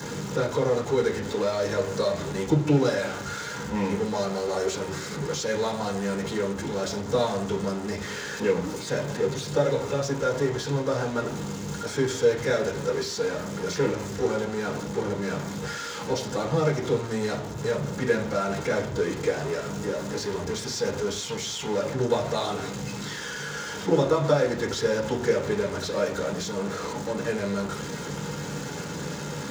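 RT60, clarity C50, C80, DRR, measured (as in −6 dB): 0.55 s, 11.0 dB, 14.5 dB, −6.0 dB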